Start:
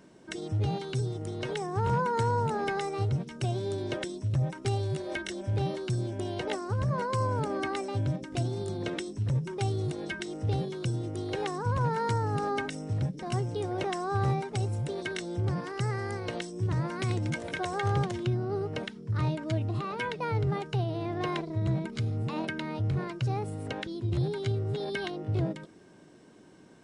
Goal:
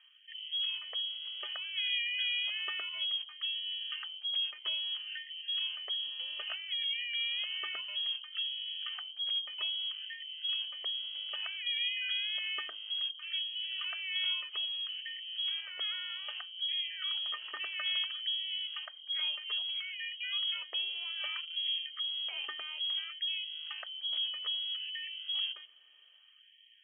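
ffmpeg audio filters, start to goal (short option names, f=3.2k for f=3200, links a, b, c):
-af "lowpass=f=2.9k:t=q:w=0.5098,lowpass=f=2.9k:t=q:w=0.6013,lowpass=f=2.9k:t=q:w=0.9,lowpass=f=2.9k:t=q:w=2.563,afreqshift=-3400,bandreject=f=50:t=h:w=6,bandreject=f=100:t=h:w=6,bandreject=f=150:t=h:w=6,bandreject=f=200:t=h:w=6,bandreject=f=250:t=h:w=6,bandreject=f=300:t=h:w=6,bandreject=f=350:t=h:w=6,afftfilt=real='re*gte(b*sr/1024,230*pow(1800/230,0.5+0.5*sin(2*PI*0.61*pts/sr)))':imag='im*gte(b*sr/1024,230*pow(1800/230,0.5+0.5*sin(2*PI*0.61*pts/sr)))':win_size=1024:overlap=0.75,volume=-6.5dB"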